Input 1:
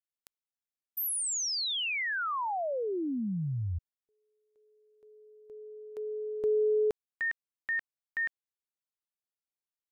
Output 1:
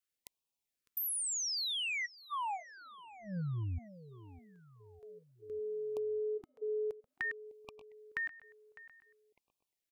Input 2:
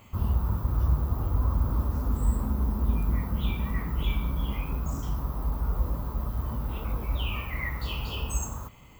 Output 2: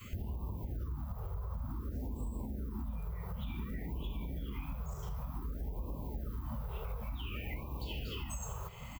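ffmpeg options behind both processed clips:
-filter_complex "[0:a]adynamicequalizer=threshold=0.00398:dfrequency=350:dqfactor=0.96:tfrequency=350:tqfactor=0.96:attack=5:release=100:ratio=0.375:range=3:mode=boostabove:tftype=bell,alimiter=limit=0.0668:level=0:latency=1:release=171,acompressor=threshold=0.0112:ratio=16:attack=5.2:release=577:knee=1:detection=peak,asplit=2[s0][s1];[s1]adelay=604,lowpass=f=4100:p=1,volume=0.133,asplit=2[s2][s3];[s3]adelay=604,lowpass=f=4100:p=1,volume=0.49,asplit=2[s4][s5];[s5]adelay=604,lowpass=f=4100:p=1,volume=0.49,asplit=2[s6][s7];[s7]adelay=604,lowpass=f=4100:p=1,volume=0.49[s8];[s2][s4][s6][s8]amix=inputs=4:normalize=0[s9];[s0][s9]amix=inputs=2:normalize=0,afftfilt=real='re*(1-between(b*sr/1024,250*pow(1700/250,0.5+0.5*sin(2*PI*0.55*pts/sr))/1.41,250*pow(1700/250,0.5+0.5*sin(2*PI*0.55*pts/sr))*1.41))':imag='im*(1-between(b*sr/1024,250*pow(1700/250,0.5+0.5*sin(2*PI*0.55*pts/sr))/1.41,250*pow(1700/250,0.5+0.5*sin(2*PI*0.55*pts/sr))*1.41))':win_size=1024:overlap=0.75,volume=1.78"

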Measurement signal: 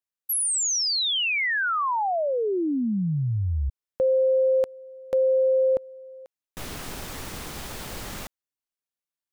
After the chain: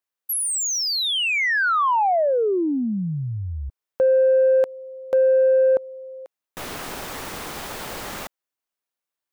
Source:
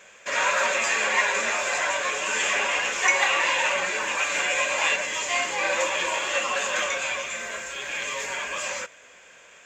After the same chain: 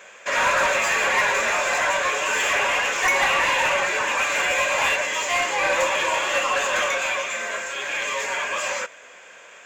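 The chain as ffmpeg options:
-filter_complex "[0:a]asplit=2[s0][s1];[s1]highpass=f=720:p=1,volume=6.31,asoftclip=type=tanh:threshold=0.473[s2];[s0][s2]amix=inputs=2:normalize=0,lowpass=f=1000:p=1,volume=0.501,aemphasis=mode=production:type=50kf"

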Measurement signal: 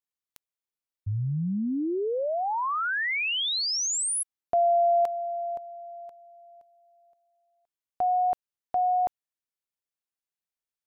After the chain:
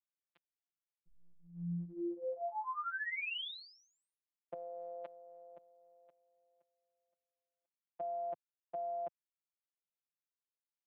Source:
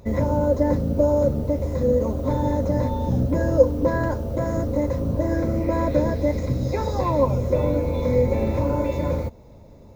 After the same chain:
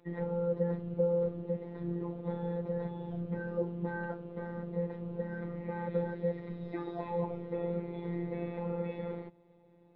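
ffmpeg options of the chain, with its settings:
-af "highpass=f=210:t=q:w=0.5412,highpass=f=210:t=q:w=1.307,lowpass=f=3400:t=q:w=0.5176,lowpass=f=3400:t=q:w=0.7071,lowpass=f=3400:t=q:w=1.932,afreqshift=-88,afftfilt=real='hypot(re,im)*cos(PI*b)':imag='0':win_size=1024:overlap=0.75,volume=0.398"

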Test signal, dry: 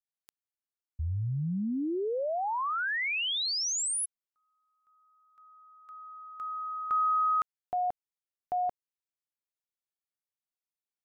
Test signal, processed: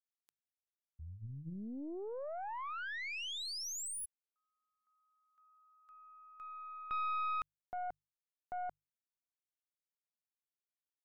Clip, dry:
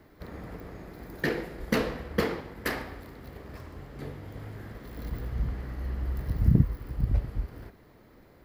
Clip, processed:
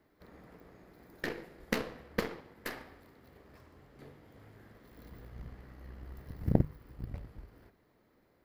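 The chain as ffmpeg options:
-af "lowshelf=f=110:g=-6.5,bandreject=f=50:t=h:w=6,bandreject=f=100:t=h:w=6,bandreject=f=150:t=h:w=6,aeval=exprs='0.335*(cos(1*acos(clip(val(0)/0.335,-1,1)))-cos(1*PI/2))+0.0841*(cos(3*acos(clip(val(0)/0.335,-1,1)))-cos(3*PI/2))+0.00266*(cos(7*acos(clip(val(0)/0.335,-1,1)))-cos(7*PI/2))+0.00596*(cos(8*acos(clip(val(0)/0.335,-1,1)))-cos(8*PI/2))':c=same,volume=1.33"

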